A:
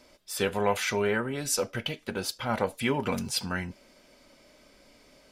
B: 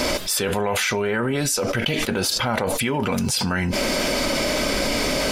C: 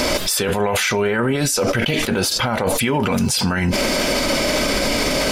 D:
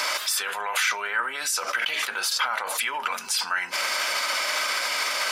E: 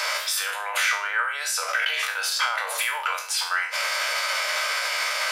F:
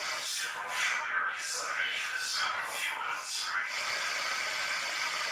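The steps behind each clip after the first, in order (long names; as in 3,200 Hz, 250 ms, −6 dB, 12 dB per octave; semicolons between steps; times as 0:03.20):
envelope flattener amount 100%
brickwall limiter −18 dBFS, peak gain reduction 9.5 dB; level +8 dB
high-pass with resonance 1,200 Hz, resonance Q 1.8; level −5.5 dB
peak hold with a decay on every bin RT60 0.47 s; Chebyshev high-pass with heavy ripple 440 Hz, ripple 3 dB
random phases in long frames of 200 ms; level −6.5 dB; Speex 15 kbit/s 32,000 Hz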